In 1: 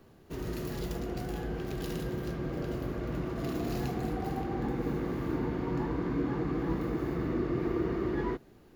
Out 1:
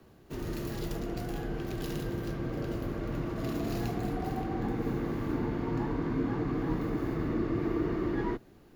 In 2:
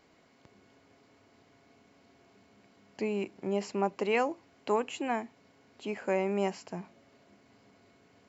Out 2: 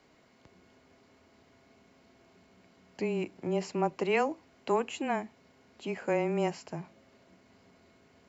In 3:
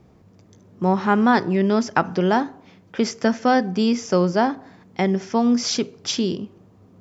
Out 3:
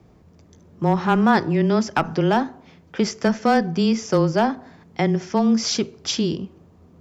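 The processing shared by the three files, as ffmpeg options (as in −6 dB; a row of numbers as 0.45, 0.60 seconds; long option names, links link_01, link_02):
-af "aeval=exprs='clip(val(0),-1,0.316)':channel_layout=same,aeval=exprs='0.501*(cos(1*acos(clip(val(0)/0.501,-1,1)))-cos(1*PI/2))+0.00562*(cos(5*acos(clip(val(0)/0.501,-1,1)))-cos(5*PI/2))':channel_layout=same,afreqshift=-16"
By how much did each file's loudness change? +0.5, +0.5, 0.0 LU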